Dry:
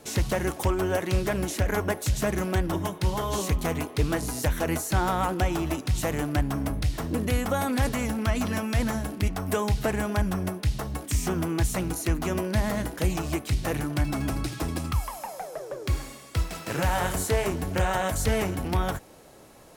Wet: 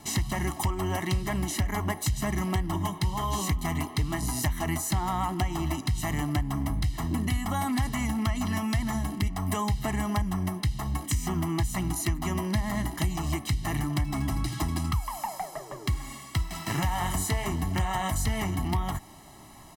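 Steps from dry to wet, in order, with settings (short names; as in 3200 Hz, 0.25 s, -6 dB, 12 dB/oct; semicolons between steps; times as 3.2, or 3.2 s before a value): comb 1 ms, depth 96%; compressor 4:1, threshold -25 dBFS, peak gain reduction 9.5 dB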